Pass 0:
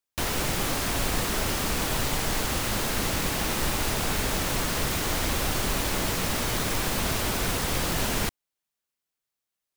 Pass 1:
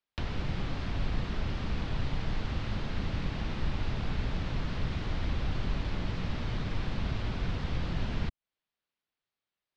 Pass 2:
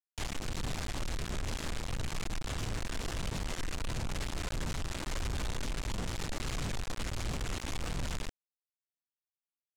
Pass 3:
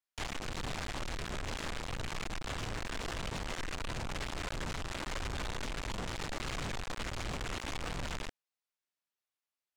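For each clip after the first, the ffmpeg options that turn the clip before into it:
ffmpeg -i in.wav -filter_complex "[0:a]acrossover=split=200[link_01][link_02];[link_02]acompressor=threshold=-39dB:ratio=6[link_03];[link_01][link_03]amix=inputs=2:normalize=0,lowpass=frequency=4300:width=0.5412,lowpass=frequency=4300:width=1.3066" out.wav
ffmpeg -i in.wav -af "aphaser=in_gain=1:out_gain=1:delay=3.7:decay=0.5:speed=1.5:type=triangular,aresample=16000,acrusher=bits=4:mix=0:aa=0.000001,aresample=44100,asoftclip=type=tanh:threshold=-31dB" out.wav
ffmpeg -i in.wav -filter_complex "[0:a]asplit=2[link_01][link_02];[link_02]highpass=frequency=720:poles=1,volume=9dB,asoftclip=type=tanh:threshold=-30.5dB[link_03];[link_01][link_03]amix=inputs=2:normalize=0,lowpass=frequency=3800:poles=1,volume=-6dB,volume=1dB" out.wav

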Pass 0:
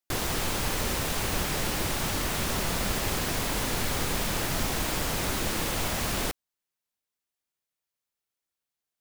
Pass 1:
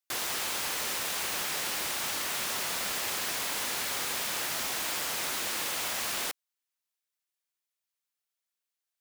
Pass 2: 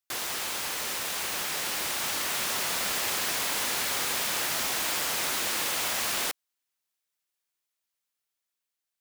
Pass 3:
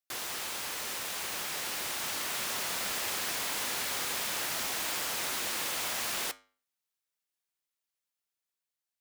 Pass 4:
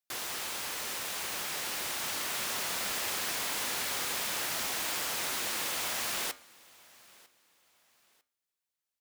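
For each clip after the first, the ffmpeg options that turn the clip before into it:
ffmpeg -i in.wav -af "highpass=frequency=1200:poles=1" out.wav
ffmpeg -i in.wav -af "dynaudnorm=framelen=750:gausssize=5:maxgain=3.5dB" out.wav
ffmpeg -i in.wav -af "flanger=delay=7.8:depth=2:regen=-85:speed=0.53:shape=sinusoidal" out.wav
ffmpeg -i in.wav -af "aecho=1:1:949|1898:0.0631|0.0189" out.wav

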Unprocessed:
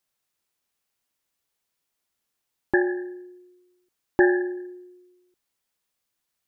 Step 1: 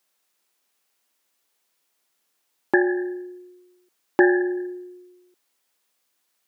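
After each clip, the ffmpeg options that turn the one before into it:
ffmpeg -i in.wav -filter_complex "[0:a]highpass=250,asplit=2[link_01][link_02];[link_02]acompressor=threshold=-29dB:ratio=6,volume=3dB[link_03];[link_01][link_03]amix=inputs=2:normalize=0" out.wav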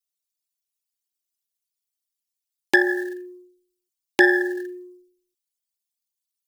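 ffmpeg -i in.wav -af "aexciter=amount=8.6:drive=8.7:freq=2100,anlmdn=1.58,volume=-1.5dB" out.wav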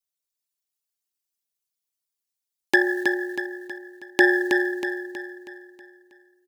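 ffmpeg -i in.wav -af "aecho=1:1:320|640|960|1280|1600|1920:0.531|0.244|0.112|0.0517|0.0238|0.0109,volume=-1.5dB" out.wav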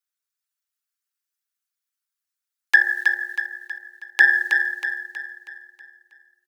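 ffmpeg -i in.wav -af "highpass=frequency=1400:width_type=q:width=2.8,volume=-1.5dB" out.wav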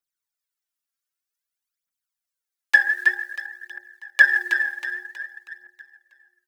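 ffmpeg -i in.wav -af "aphaser=in_gain=1:out_gain=1:delay=3.8:decay=0.66:speed=0.53:type=triangular,volume=-4dB" out.wav

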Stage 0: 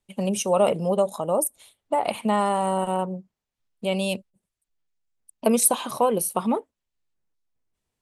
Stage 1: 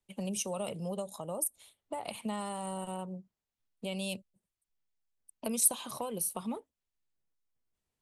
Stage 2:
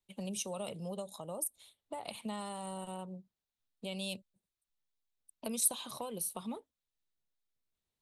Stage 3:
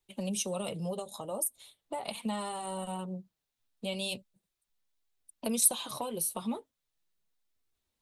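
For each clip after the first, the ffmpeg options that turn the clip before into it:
ffmpeg -i in.wav -filter_complex "[0:a]acrossover=split=160|3000[link_01][link_02][link_03];[link_02]acompressor=threshold=-35dB:ratio=2.5[link_04];[link_01][link_04][link_03]amix=inputs=3:normalize=0,volume=-6dB" out.wav
ffmpeg -i in.wav -af "equalizer=frequency=3800:width=3.3:gain=7,volume=-4dB" out.wav
ffmpeg -i in.wav -af "flanger=delay=2.3:depth=6.8:regen=-34:speed=0.39:shape=triangular,volume=9dB" out.wav

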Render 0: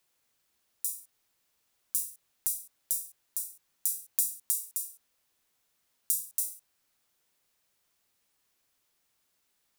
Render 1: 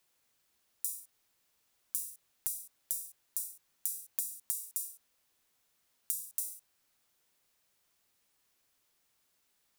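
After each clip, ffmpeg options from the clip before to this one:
ffmpeg -i in.wav -af "acompressor=threshold=-30dB:ratio=10" out.wav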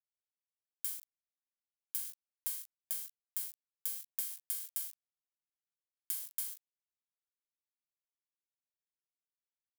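ffmpeg -i in.wav -af "acrusher=bits=4:dc=4:mix=0:aa=0.000001,asoftclip=type=tanh:threshold=-19dB,aderivative" out.wav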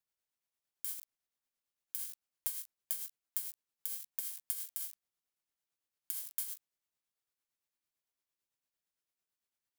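ffmpeg -i in.wav -af "acompressor=threshold=-37dB:ratio=6,tremolo=f=8.9:d=0.46,volume=6dB" out.wav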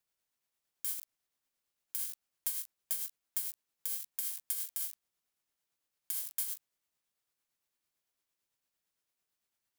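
ffmpeg -i in.wav -af "asoftclip=type=tanh:threshold=-24dB,volume=4.5dB" out.wav

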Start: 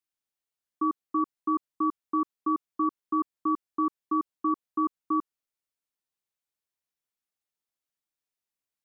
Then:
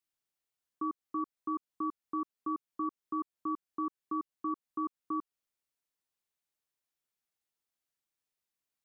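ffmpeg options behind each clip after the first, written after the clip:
ffmpeg -i in.wav -af "alimiter=level_in=2.5dB:limit=-24dB:level=0:latency=1:release=188,volume=-2.5dB" out.wav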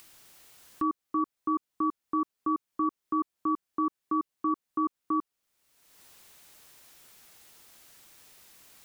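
ffmpeg -i in.wav -af "acompressor=mode=upward:threshold=-40dB:ratio=2.5,volume=6.5dB" out.wav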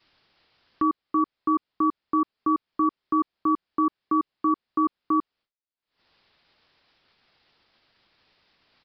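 ffmpeg -i in.wav -af "aresample=11025,aresample=44100,agate=range=-33dB:threshold=-54dB:ratio=3:detection=peak,volume=5.5dB" out.wav

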